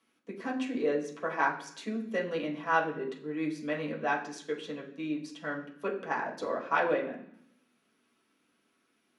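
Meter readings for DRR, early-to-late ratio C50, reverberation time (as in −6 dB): −3.5 dB, 9.0 dB, 0.65 s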